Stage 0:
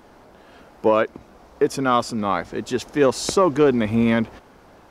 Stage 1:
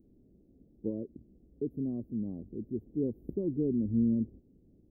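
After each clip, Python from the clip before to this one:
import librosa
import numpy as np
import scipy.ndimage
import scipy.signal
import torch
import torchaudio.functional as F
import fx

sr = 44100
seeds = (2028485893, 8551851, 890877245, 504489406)

y = scipy.signal.sosfilt(scipy.signal.cheby2(4, 70, [1300.0, 8400.0], 'bandstop', fs=sr, output='sos'), x)
y = y * librosa.db_to_amplitude(-8.0)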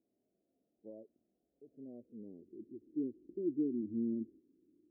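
y = fx.filter_sweep_bandpass(x, sr, from_hz=700.0, to_hz=330.0, start_s=1.57, end_s=2.67, q=4.0)
y = fx.hpss(y, sr, part='percussive', gain_db=-13)
y = y * librosa.db_to_amplitude(1.0)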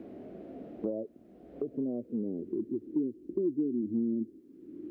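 y = fx.band_squash(x, sr, depth_pct=100)
y = y * librosa.db_to_amplitude(7.5)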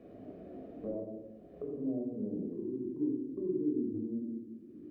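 y = fx.room_shoebox(x, sr, seeds[0], volume_m3=3700.0, walls='furnished', distance_m=6.0)
y = y * librosa.db_to_amplitude(-8.5)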